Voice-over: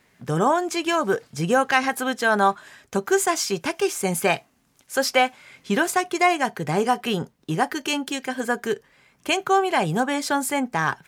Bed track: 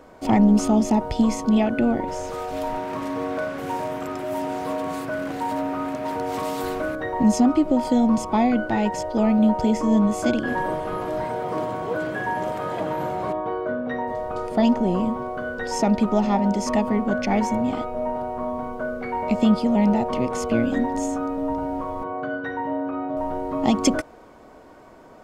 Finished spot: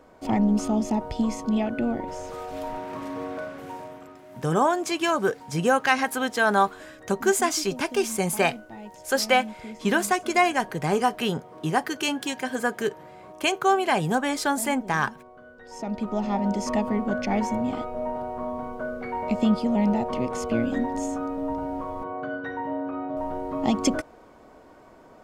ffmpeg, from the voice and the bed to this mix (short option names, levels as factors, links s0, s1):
-filter_complex "[0:a]adelay=4150,volume=0.841[s0];[1:a]volume=3.16,afade=t=out:st=3.23:d=0.99:silence=0.211349,afade=t=in:st=15.63:d=0.9:silence=0.16788[s1];[s0][s1]amix=inputs=2:normalize=0"